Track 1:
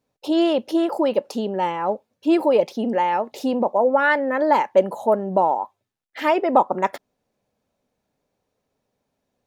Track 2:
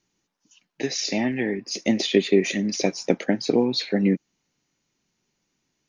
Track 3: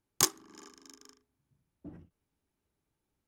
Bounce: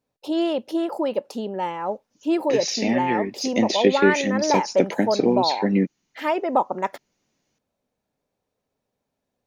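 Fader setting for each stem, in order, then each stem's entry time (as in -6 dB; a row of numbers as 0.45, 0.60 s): -4.0 dB, +0.5 dB, off; 0.00 s, 1.70 s, off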